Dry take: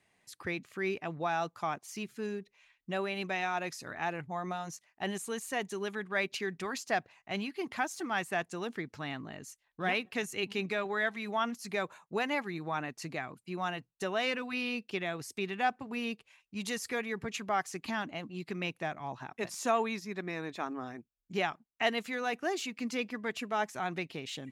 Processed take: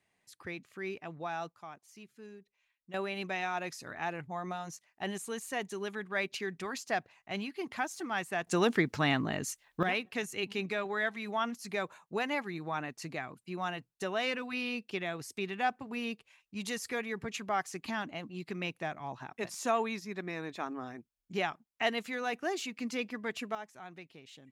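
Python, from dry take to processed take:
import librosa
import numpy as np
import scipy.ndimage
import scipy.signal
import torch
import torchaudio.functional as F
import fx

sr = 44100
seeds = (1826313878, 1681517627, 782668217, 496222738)

y = fx.gain(x, sr, db=fx.steps((0.0, -5.5), (1.52, -13.0), (2.94, -1.5), (8.47, 10.5), (9.83, -1.0), (23.55, -13.0)))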